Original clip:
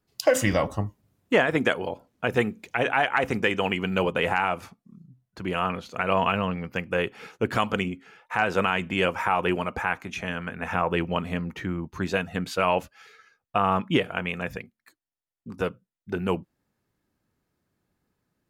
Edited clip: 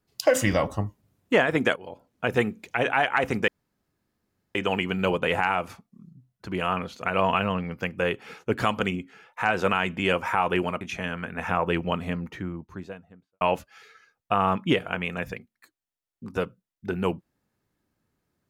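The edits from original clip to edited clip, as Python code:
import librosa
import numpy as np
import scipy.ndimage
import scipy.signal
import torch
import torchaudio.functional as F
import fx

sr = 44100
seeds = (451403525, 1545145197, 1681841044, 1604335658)

y = fx.studio_fade_out(x, sr, start_s=11.16, length_s=1.49)
y = fx.edit(y, sr, fx.fade_in_from(start_s=1.76, length_s=0.49, floor_db=-17.5),
    fx.insert_room_tone(at_s=3.48, length_s=1.07),
    fx.cut(start_s=9.74, length_s=0.31), tone=tone)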